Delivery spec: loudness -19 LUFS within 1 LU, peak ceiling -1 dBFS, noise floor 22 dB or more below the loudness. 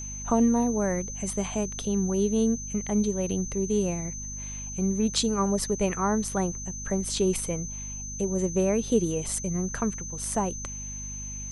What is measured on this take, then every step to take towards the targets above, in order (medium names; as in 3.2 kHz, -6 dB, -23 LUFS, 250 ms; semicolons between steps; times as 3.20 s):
hum 50 Hz; highest harmonic 250 Hz; hum level -38 dBFS; steady tone 6.2 kHz; tone level -36 dBFS; loudness -27.5 LUFS; peak level -11.0 dBFS; loudness target -19.0 LUFS
-> hum notches 50/100/150/200/250 Hz; band-stop 6.2 kHz, Q 30; trim +8.5 dB